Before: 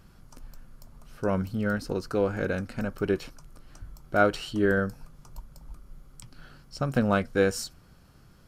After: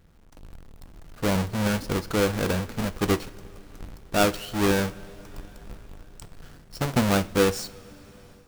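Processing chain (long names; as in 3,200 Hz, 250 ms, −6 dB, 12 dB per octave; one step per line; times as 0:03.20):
each half-wave held at its own peak
coupled-rooms reverb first 0.34 s, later 4.9 s, from −18 dB, DRR 13 dB
automatic gain control gain up to 7 dB
level −8.5 dB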